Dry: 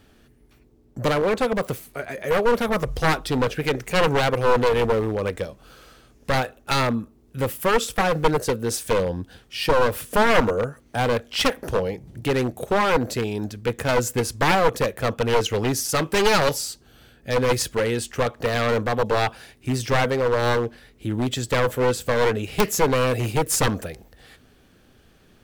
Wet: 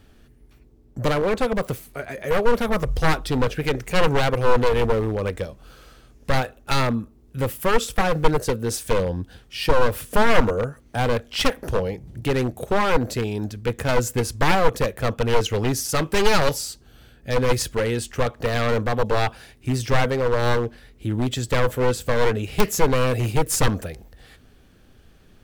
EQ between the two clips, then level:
low-shelf EQ 88 Hz +9.5 dB
−1.0 dB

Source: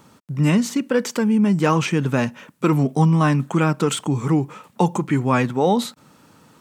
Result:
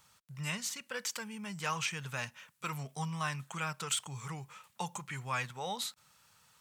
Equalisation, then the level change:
guitar amp tone stack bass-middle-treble 10-0-10
−5.5 dB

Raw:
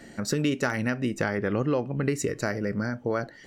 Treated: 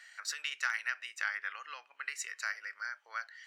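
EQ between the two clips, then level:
high-pass filter 1,400 Hz 24 dB per octave
low-pass filter 4,000 Hz 6 dB per octave
0.0 dB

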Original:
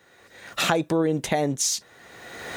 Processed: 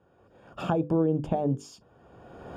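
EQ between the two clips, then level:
moving average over 22 samples
low-shelf EQ 170 Hz +9.5 dB
mains-hum notches 50/100/150/200/250/300/350/400/450/500 Hz
−3.0 dB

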